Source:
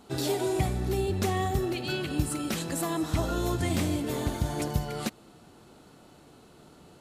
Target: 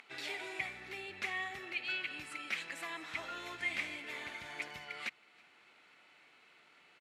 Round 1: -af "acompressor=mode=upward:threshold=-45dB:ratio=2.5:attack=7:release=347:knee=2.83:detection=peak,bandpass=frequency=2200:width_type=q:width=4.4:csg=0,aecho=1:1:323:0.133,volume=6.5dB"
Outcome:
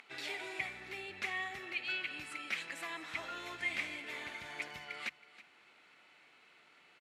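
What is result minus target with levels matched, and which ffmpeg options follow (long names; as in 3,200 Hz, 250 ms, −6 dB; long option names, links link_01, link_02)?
echo-to-direct +9 dB
-af "acompressor=mode=upward:threshold=-45dB:ratio=2.5:attack=7:release=347:knee=2.83:detection=peak,bandpass=frequency=2200:width_type=q:width=4.4:csg=0,aecho=1:1:323:0.0473,volume=6.5dB"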